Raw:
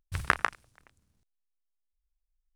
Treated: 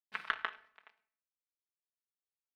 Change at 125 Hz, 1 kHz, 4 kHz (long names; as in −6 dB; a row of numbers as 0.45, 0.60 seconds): below −30 dB, −10.0 dB, −3.0 dB